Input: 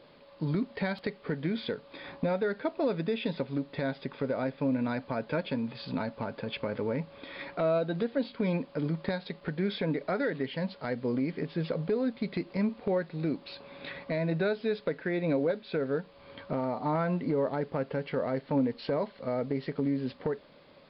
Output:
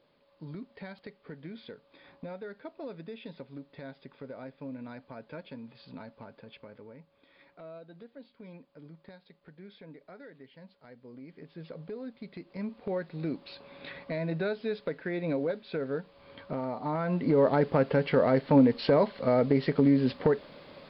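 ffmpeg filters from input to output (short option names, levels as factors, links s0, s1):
-af "volume=5.01,afade=t=out:st=6.21:d=0.74:silence=0.446684,afade=t=in:st=11.11:d=0.7:silence=0.398107,afade=t=in:st=12.41:d=0.71:silence=0.375837,afade=t=in:st=17.02:d=0.49:silence=0.334965"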